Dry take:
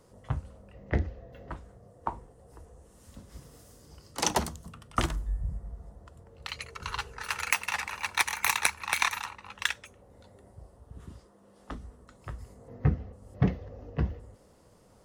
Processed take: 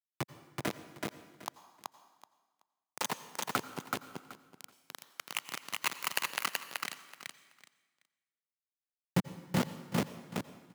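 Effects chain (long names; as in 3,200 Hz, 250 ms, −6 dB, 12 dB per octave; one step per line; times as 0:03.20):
pitch glide at a constant tempo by +4 semitones starting unshifted
reverb reduction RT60 1.1 s
high-shelf EQ 2,600 Hz −7.5 dB
in parallel at −1 dB: downward compressor 10 to 1, threshold −45 dBFS, peak gain reduction 25.5 dB
on the sum: power curve on the samples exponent 1.4
bit reduction 5 bits
high-pass filter 140 Hz 24 dB per octave
tempo change 1.4×
repeating echo 378 ms, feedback 18%, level −3 dB
on a send at −14 dB: convolution reverb RT60 1.2 s, pre-delay 77 ms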